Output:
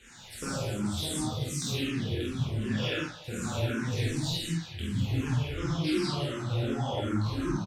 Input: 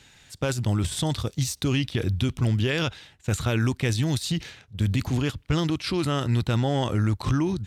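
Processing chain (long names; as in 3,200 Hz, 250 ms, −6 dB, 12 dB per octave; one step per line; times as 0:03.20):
transient designer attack 0 dB, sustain −4 dB
downward compressor 6 to 1, threshold −33 dBFS, peak gain reduction 13 dB
far-end echo of a speakerphone 190 ms, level −14 dB
multi-voice chorus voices 4, 0.71 Hz, delay 22 ms, depth 3.8 ms
double-tracking delay 48 ms −3 dB
reverb whose tail is shaped and stops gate 230 ms flat, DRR −7 dB
0:04.02–0:04.44: background noise brown −47 dBFS
frequency shifter mixed with the dry sound −2.7 Hz
level +2.5 dB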